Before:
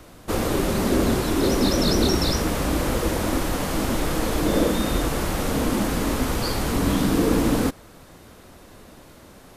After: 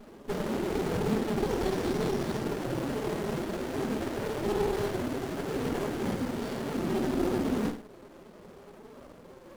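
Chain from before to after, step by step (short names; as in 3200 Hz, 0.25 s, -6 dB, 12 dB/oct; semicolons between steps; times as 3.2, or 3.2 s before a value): HPF 120 Hz 12 dB/oct; band noise 290–720 Hz -46 dBFS; soft clip -18 dBFS, distortion -15 dB; flange 0.3 Hz, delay 2.7 ms, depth 2.5 ms, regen +86%; formant-preserving pitch shift +11.5 st; flutter echo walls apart 8.9 m, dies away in 0.41 s; on a send at -9 dB: reverb RT60 0.20 s, pre-delay 3 ms; on the sum: running maximum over 33 samples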